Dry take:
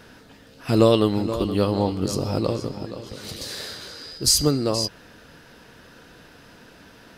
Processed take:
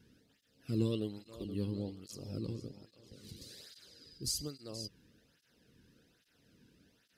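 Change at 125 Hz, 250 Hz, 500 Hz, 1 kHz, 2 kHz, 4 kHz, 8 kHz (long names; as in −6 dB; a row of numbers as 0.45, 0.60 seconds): −14.5, −16.0, −21.5, −30.0, −23.0, −18.5, −18.0 decibels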